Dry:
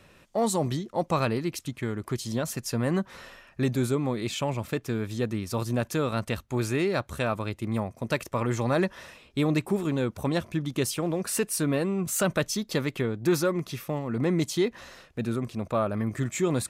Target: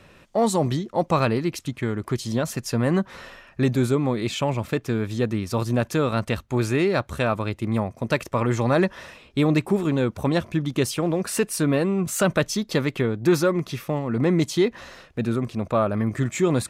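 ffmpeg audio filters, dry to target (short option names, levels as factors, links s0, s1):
-af "highshelf=f=6700:g=-7,volume=1.78"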